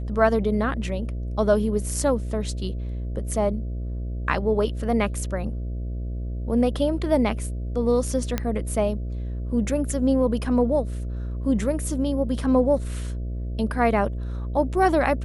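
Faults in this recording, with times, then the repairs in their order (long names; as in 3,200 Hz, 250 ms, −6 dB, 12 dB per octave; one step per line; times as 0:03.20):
mains buzz 60 Hz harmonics 11 −29 dBFS
0:08.38: click −10 dBFS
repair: click removal
hum removal 60 Hz, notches 11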